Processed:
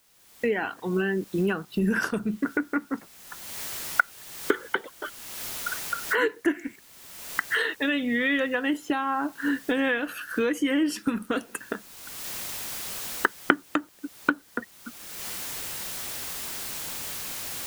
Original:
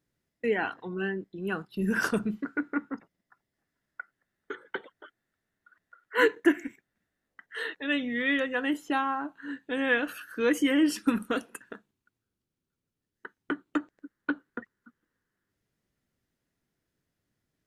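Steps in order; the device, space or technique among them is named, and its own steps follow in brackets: cheap recorder with automatic gain (white noise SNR 30 dB; recorder AGC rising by 33 dB/s); gain -2.5 dB

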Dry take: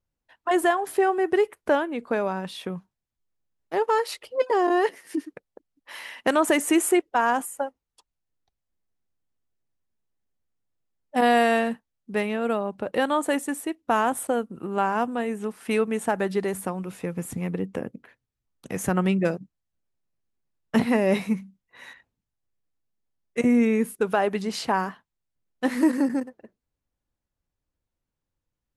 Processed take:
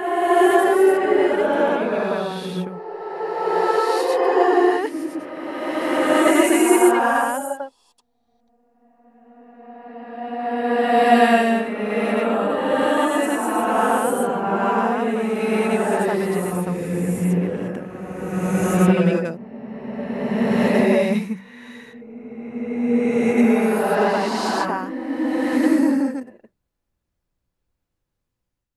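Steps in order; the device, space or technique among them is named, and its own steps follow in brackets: reverse reverb (reverse; reverb RT60 3.0 s, pre-delay 75 ms, DRR -7.5 dB; reverse); gain -2.5 dB

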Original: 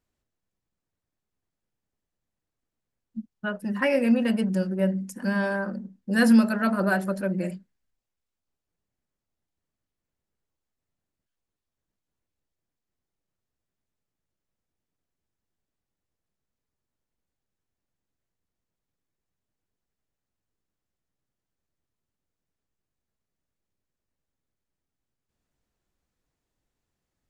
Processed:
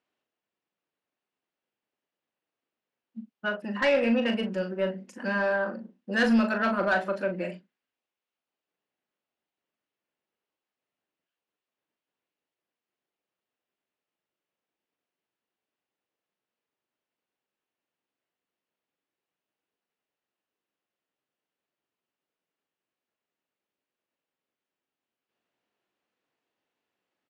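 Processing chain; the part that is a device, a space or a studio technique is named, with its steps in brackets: intercom (BPF 330–3600 Hz; bell 2800 Hz +5 dB 0.41 oct; soft clip -19 dBFS, distortion -16 dB; doubler 39 ms -8 dB); gain +2 dB

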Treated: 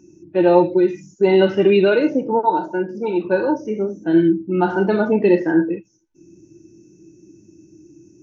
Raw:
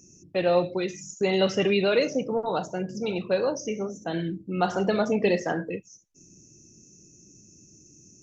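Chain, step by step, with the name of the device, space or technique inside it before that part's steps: inside a cardboard box (LPF 3400 Hz 12 dB/oct; small resonant body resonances 330/900/1500 Hz, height 13 dB, ringing for 50 ms); 2.39–3.25 HPF 240 Hz 12 dB/oct; harmonic-percussive split percussive -15 dB; gain +6 dB

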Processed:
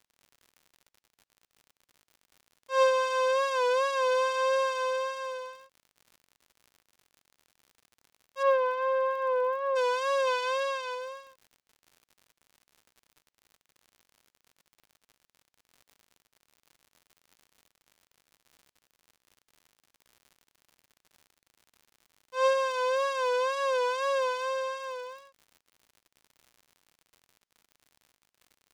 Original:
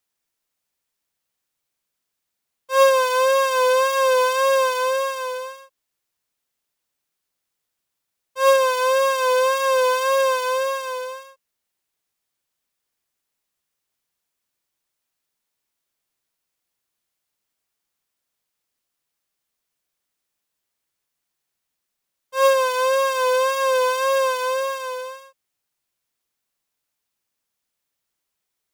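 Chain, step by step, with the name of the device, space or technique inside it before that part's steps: 8.42–9.75 LPF 2200 Hz -> 1100 Hz 12 dB/oct; lo-fi chain (LPF 6100 Hz 12 dB/oct; wow and flutter; crackle 87/s -37 dBFS); 10.27–10.95 bell 2900 Hz +5 dB 1.8 oct; gain -8.5 dB

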